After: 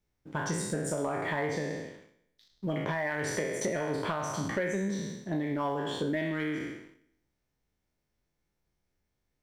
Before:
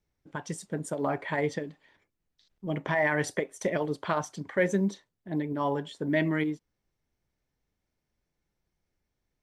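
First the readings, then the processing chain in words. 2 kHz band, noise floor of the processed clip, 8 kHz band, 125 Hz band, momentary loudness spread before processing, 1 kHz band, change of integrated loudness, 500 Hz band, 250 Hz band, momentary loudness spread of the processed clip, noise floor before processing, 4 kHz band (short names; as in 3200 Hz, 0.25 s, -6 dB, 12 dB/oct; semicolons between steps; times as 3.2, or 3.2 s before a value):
-2.5 dB, -81 dBFS, +4.0 dB, -1.5 dB, 12 LU, -1.5 dB, -2.5 dB, -2.5 dB, -2.0 dB, 6 LU, -83 dBFS, +2.5 dB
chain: spectral trails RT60 0.84 s; compressor 10:1, threshold -31 dBFS, peak gain reduction 13 dB; sample leveller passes 1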